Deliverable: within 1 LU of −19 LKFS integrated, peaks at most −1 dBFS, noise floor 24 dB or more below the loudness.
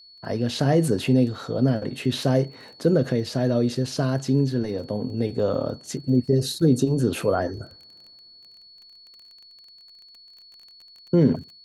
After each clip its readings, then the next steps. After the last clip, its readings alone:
crackle rate 23 per second; interfering tone 4,400 Hz; level of the tone −47 dBFS; integrated loudness −23.5 LKFS; sample peak −7.0 dBFS; target loudness −19.0 LKFS
→ click removal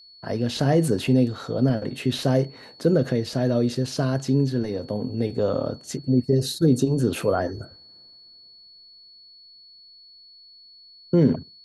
crackle rate 0 per second; interfering tone 4,400 Hz; level of the tone −47 dBFS
→ notch filter 4,400 Hz, Q 30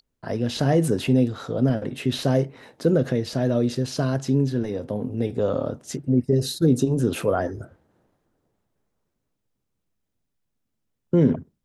interfering tone none found; integrated loudness −23.5 LKFS; sample peak −7.0 dBFS; target loudness −19.0 LKFS
→ level +4.5 dB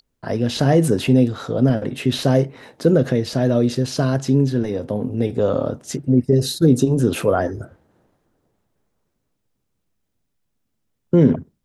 integrated loudness −19.0 LKFS; sample peak −2.5 dBFS; background noise floor −74 dBFS

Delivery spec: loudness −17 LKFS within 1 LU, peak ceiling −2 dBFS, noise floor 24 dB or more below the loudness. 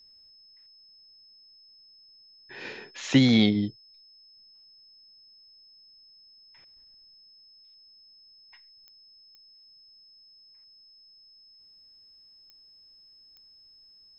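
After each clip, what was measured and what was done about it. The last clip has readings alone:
number of clicks 4; interfering tone 5,200 Hz; level of the tone −53 dBFS; integrated loudness −24.0 LKFS; sample peak −8.0 dBFS; target loudness −17.0 LKFS
→ click removal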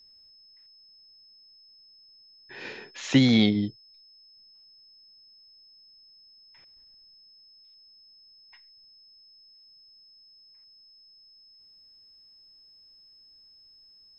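number of clicks 0; interfering tone 5,200 Hz; level of the tone −53 dBFS
→ notch filter 5,200 Hz, Q 30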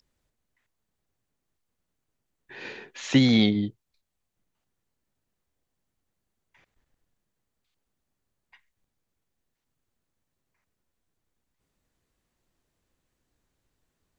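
interfering tone none found; integrated loudness −22.5 LKFS; sample peak −8.0 dBFS; target loudness −17.0 LKFS
→ level +5.5 dB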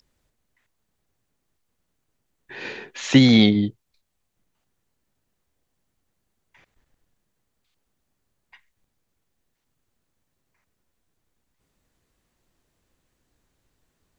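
integrated loudness −17.0 LKFS; sample peak −2.5 dBFS; background noise floor −76 dBFS

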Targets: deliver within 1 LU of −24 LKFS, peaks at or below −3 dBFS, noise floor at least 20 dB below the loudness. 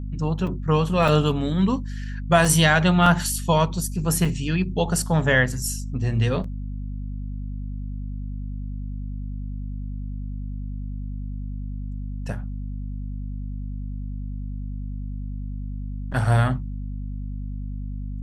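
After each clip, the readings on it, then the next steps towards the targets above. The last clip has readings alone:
number of dropouts 7; longest dropout 3.7 ms; mains hum 50 Hz; hum harmonics up to 250 Hz; level of the hum −28 dBFS; integrated loudness −25.0 LKFS; sample peak −3.5 dBFS; target loudness −24.0 LKFS
→ repair the gap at 0:00.47/0:01.08/0:02.45/0:03.06/0:04.25/0:06.44/0:16.12, 3.7 ms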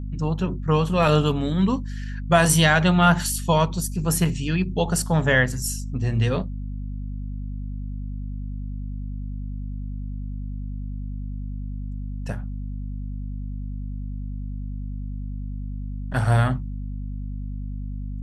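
number of dropouts 0; mains hum 50 Hz; hum harmonics up to 250 Hz; level of the hum −28 dBFS
→ hum removal 50 Hz, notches 5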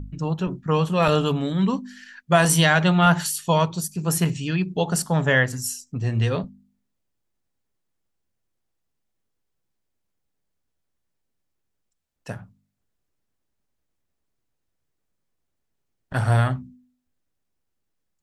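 mains hum none found; integrated loudness −21.5 LKFS; sample peak −4.0 dBFS; target loudness −24.0 LKFS
→ level −2.5 dB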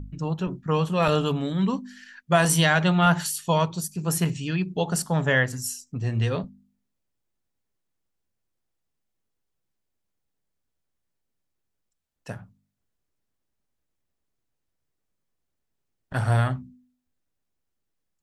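integrated loudness −24.0 LKFS; sample peak −6.5 dBFS; background noise floor −79 dBFS

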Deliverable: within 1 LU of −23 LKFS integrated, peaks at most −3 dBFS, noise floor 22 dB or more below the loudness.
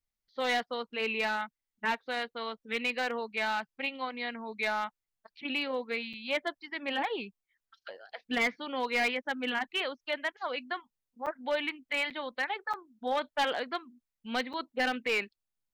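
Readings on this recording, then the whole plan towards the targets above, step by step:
share of clipped samples 0.6%; peaks flattened at −23.0 dBFS; number of dropouts 5; longest dropout 6.5 ms; integrated loudness −33.0 LKFS; sample peak −23.0 dBFS; target loudness −23.0 LKFS
→ clipped peaks rebuilt −23 dBFS
repair the gap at 0:06.13/0:11.26/0:12.10/0:12.73/0:14.53, 6.5 ms
level +10 dB

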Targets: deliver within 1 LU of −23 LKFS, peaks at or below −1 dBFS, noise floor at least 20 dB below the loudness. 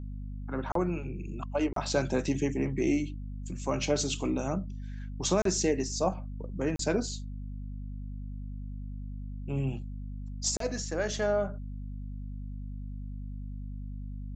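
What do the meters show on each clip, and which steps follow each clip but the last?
number of dropouts 5; longest dropout 33 ms; mains hum 50 Hz; hum harmonics up to 250 Hz; level of the hum −36 dBFS; integrated loudness −33.0 LKFS; sample peak −14.0 dBFS; target loudness −23.0 LKFS
→ repair the gap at 0:00.72/0:01.73/0:05.42/0:06.76/0:10.57, 33 ms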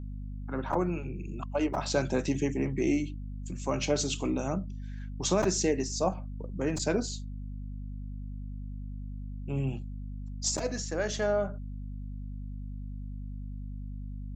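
number of dropouts 0; mains hum 50 Hz; hum harmonics up to 250 Hz; level of the hum −36 dBFS
→ hum removal 50 Hz, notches 5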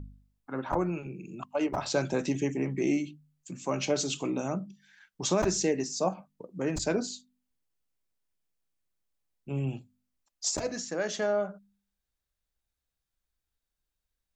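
mains hum none found; integrated loudness −31.0 LKFS; sample peak −14.5 dBFS; target loudness −23.0 LKFS
→ level +8 dB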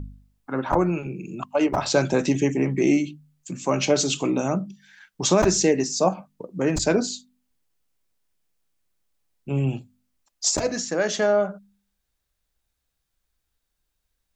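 integrated loudness −23.0 LKFS; sample peak −6.5 dBFS; background noise floor −78 dBFS

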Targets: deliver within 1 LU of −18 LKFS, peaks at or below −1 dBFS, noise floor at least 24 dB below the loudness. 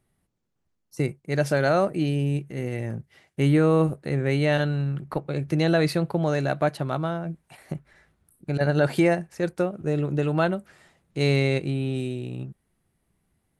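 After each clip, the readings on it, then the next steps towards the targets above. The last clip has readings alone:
integrated loudness −25.0 LKFS; sample peak −9.5 dBFS; target loudness −18.0 LKFS
→ level +7 dB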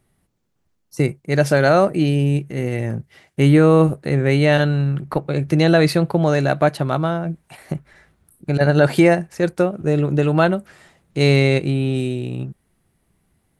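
integrated loudness −18.0 LKFS; sample peak −2.5 dBFS; background noise floor −68 dBFS

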